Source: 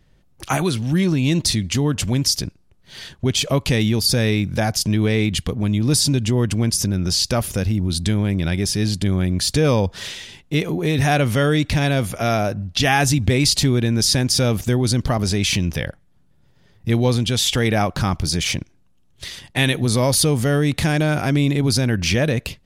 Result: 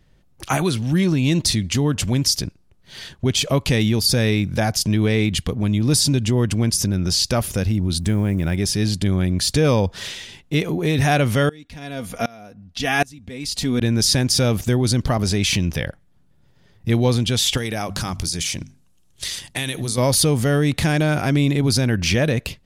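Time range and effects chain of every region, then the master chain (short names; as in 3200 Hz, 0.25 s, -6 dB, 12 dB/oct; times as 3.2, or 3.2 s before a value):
8–8.57 block floating point 7-bit + bell 4000 Hz -11 dB 1 oct
11.49–13.81 comb 4.2 ms, depth 51% + dB-ramp tremolo swelling 1.3 Hz, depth 27 dB
17.57–19.98 bell 8800 Hz +11 dB 2 oct + notches 50/100/150/200/250 Hz + compressor 5:1, threshold -21 dBFS
whole clip: dry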